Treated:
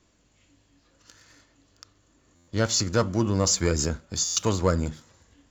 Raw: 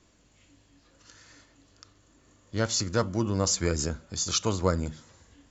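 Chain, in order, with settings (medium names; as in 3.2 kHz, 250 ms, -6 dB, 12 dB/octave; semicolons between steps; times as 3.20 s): waveshaping leveller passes 1; buffer glitch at 2.35/4.24 s, samples 512, times 10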